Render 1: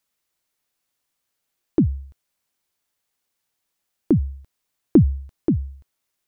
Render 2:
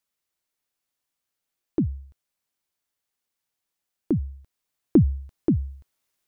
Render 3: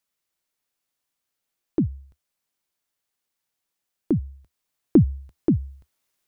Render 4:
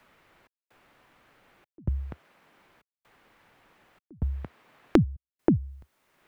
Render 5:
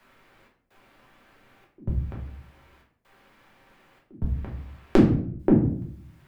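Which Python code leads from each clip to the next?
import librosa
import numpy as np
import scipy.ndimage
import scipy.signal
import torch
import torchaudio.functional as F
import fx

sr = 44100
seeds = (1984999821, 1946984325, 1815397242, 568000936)

y1 = fx.rider(x, sr, range_db=10, speed_s=2.0)
y1 = y1 * librosa.db_to_amplitude(-2.0)
y2 = fx.peak_eq(y1, sr, hz=73.0, db=-5.5, octaves=0.36)
y2 = y2 * librosa.db_to_amplitude(1.5)
y3 = fx.step_gate(y2, sr, bpm=128, pattern='xxxx..xxxx', floor_db=-60.0, edge_ms=4.5)
y3 = fx.band_squash(y3, sr, depth_pct=100)
y4 = fx.room_shoebox(y3, sr, seeds[0], volume_m3=76.0, walls='mixed', distance_m=1.1)
y4 = y4 * librosa.db_to_amplitude(-1.5)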